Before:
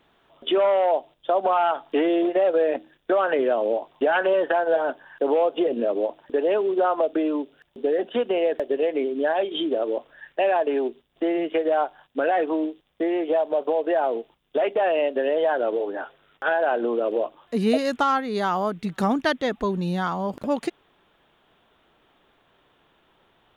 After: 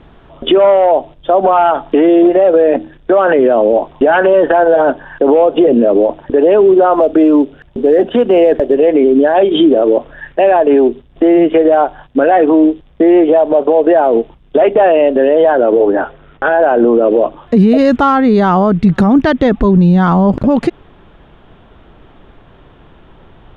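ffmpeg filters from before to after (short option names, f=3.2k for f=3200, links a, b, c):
-filter_complex "[0:a]asplit=3[a][b][c];[a]afade=t=out:st=6.93:d=0.02[d];[b]acrusher=bits=9:mode=log:mix=0:aa=0.000001,afade=t=in:st=6.93:d=0.02,afade=t=out:st=8.74:d=0.02[e];[c]afade=t=in:st=8.74:d=0.02[f];[d][e][f]amix=inputs=3:normalize=0,asettb=1/sr,asplit=3[g][h][i];[g]atrim=end=15.554[j];[h]atrim=start=15.55:end=17.08,asetpts=PTS-STARTPTS,afade=t=in:d=0.004:c=qsin,afade=t=out:st=1.526:d=0.004:c=qsin,highshelf=f=5.5k:g=-11[k];[i]atrim=start=17.076[l];[j][k]acrossfade=d=0.004:c1=hsin:c2=qsin[m];[m][l]acrossfade=d=0.004:c1=qsin:c2=hsin,aemphasis=mode=reproduction:type=riaa,alimiter=level_in=16.5dB:limit=-1dB:release=50:level=0:latency=1,volume=-1dB"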